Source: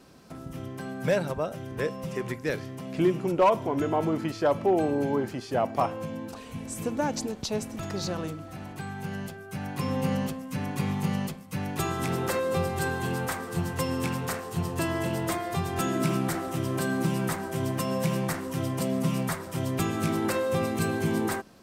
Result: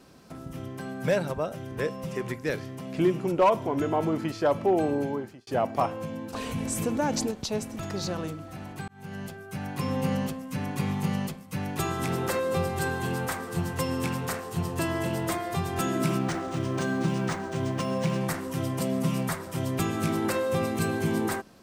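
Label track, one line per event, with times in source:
4.940000	5.470000	fade out
6.340000	7.310000	envelope flattener amount 50%
8.880000	9.420000	fade in equal-power
16.180000	18.210000	linearly interpolated sample-rate reduction rate divided by 3×

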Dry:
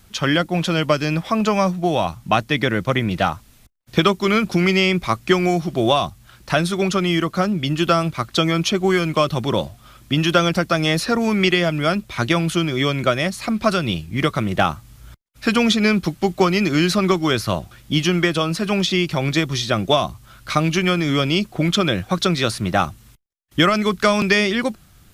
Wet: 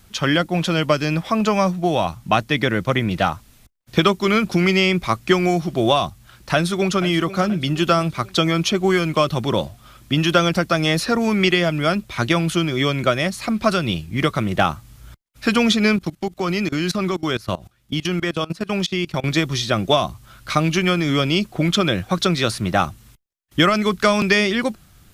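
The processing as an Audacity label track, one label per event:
6.530000	7.060000	delay throw 480 ms, feedback 50%, level −14.5 dB
15.960000	19.240000	output level in coarse steps of 21 dB

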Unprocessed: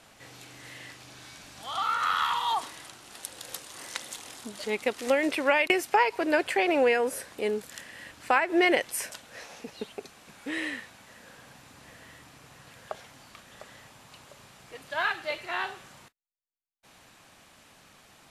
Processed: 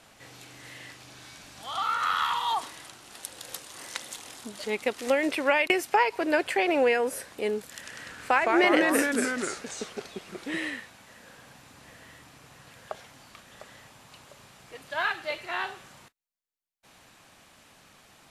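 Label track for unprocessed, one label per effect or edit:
7.740000	10.700000	delay with pitch and tempo change per echo 93 ms, each echo −2 semitones, echoes 3

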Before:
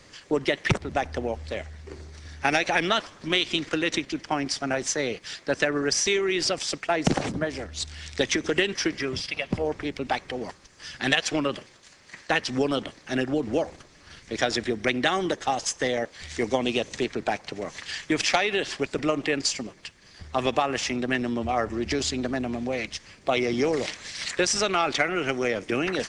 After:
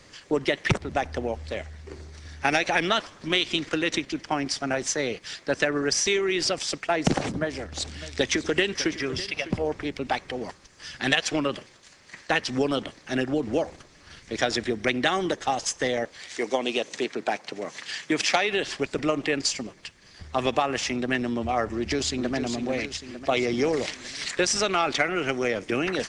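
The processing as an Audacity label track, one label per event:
7.120000	9.550000	single-tap delay 603 ms −15 dB
16.190000	18.480000	high-pass filter 350 Hz → 130 Hz
21.720000	22.350000	delay throw 450 ms, feedback 60%, level −8 dB

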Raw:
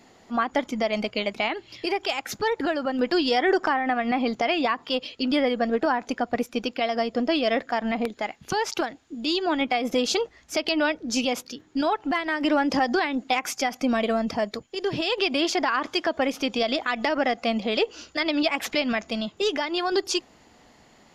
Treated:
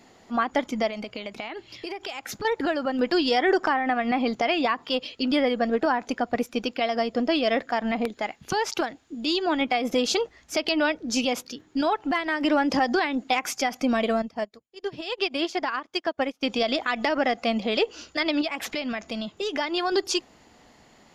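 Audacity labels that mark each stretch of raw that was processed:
0.880000	2.450000	downward compressor, threshold −30 dBFS
14.220000	16.430000	expander for the loud parts 2.5 to 1, over −41 dBFS
18.410000	19.550000	downward compressor 2 to 1, threshold −29 dBFS

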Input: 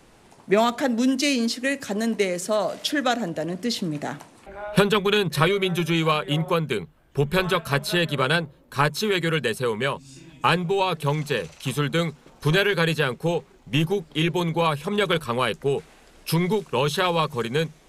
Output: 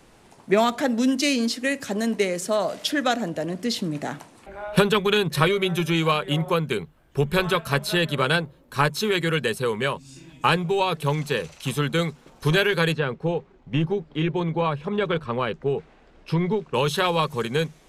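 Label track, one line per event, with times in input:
12.920000	16.740000	head-to-tape spacing loss at 10 kHz 24 dB

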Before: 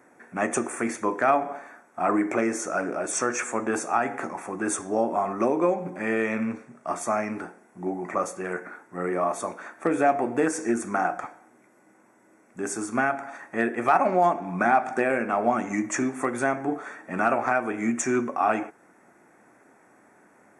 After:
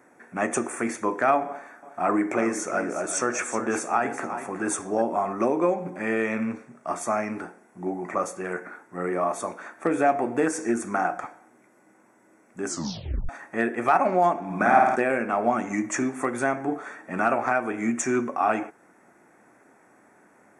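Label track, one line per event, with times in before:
1.460000	5.020000	single-tap delay 366 ms −11 dB
12.650000	12.650000	tape stop 0.64 s
14.450000	14.960000	flutter between parallel walls apart 9 metres, dies away in 1.1 s

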